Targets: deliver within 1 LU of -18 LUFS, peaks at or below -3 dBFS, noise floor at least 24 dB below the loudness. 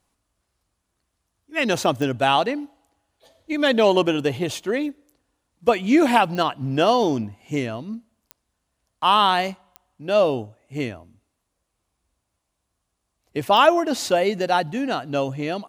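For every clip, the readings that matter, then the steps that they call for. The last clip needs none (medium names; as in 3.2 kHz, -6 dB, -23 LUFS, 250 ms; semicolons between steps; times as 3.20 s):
clicks found 5; loudness -21.0 LUFS; peak level -2.0 dBFS; loudness target -18.0 LUFS
-> de-click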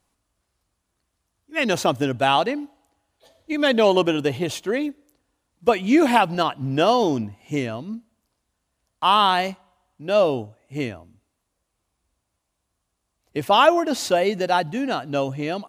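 clicks found 0; loudness -21.0 LUFS; peak level -2.0 dBFS; loudness target -18.0 LUFS
-> trim +3 dB; peak limiter -3 dBFS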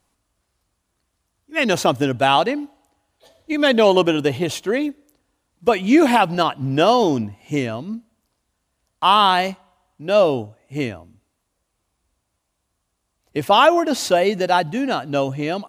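loudness -18.5 LUFS; peak level -3.0 dBFS; noise floor -74 dBFS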